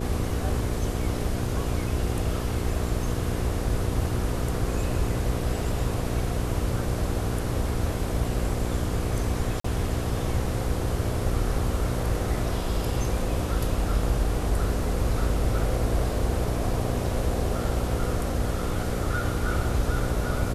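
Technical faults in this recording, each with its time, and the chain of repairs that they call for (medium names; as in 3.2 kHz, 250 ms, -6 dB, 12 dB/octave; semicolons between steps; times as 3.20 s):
hum 60 Hz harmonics 8 -31 dBFS
9.60–9.64 s: dropout 44 ms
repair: de-hum 60 Hz, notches 8; interpolate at 9.60 s, 44 ms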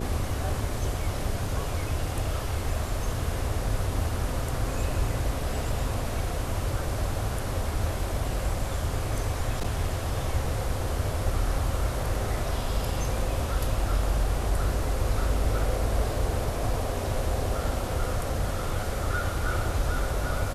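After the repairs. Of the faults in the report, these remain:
nothing left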